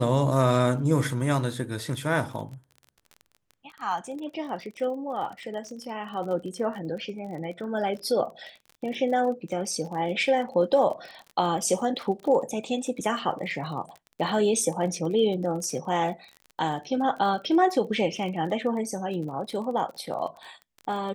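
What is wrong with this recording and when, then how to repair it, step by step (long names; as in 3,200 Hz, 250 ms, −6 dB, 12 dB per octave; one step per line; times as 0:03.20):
surface crackle 31 per second −35 dBFS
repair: click removal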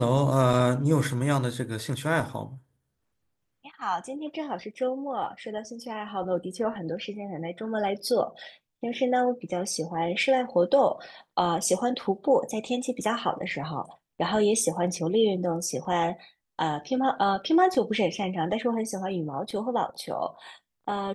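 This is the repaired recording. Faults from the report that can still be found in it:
none of them is left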